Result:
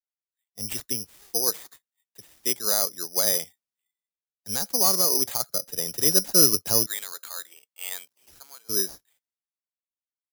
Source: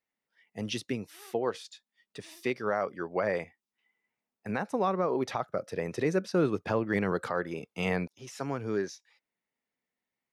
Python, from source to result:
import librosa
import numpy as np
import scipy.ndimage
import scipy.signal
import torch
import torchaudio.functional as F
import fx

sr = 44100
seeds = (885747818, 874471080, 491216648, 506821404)

y = fx.highpass(x, sr, hz=1100.0, slope=12, at=(6.86, 8.69))
y = (np.kron(y[::8], np.eye(8)[0]) * 8)[:len(y)]
y = fx.band_widen(y, sr, depth_pct=70)
y = y * 10.0 ** (-3.5 / 20.0)